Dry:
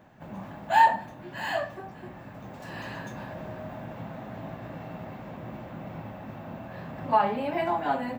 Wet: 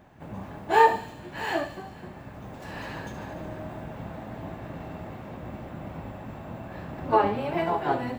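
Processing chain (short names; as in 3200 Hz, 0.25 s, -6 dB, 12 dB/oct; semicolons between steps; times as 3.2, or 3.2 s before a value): harmoniser -12 st -5 dB, +5 st -15 dB; thin delay 73 ms, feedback 71%, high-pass 4000 Hz, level -7.5 dB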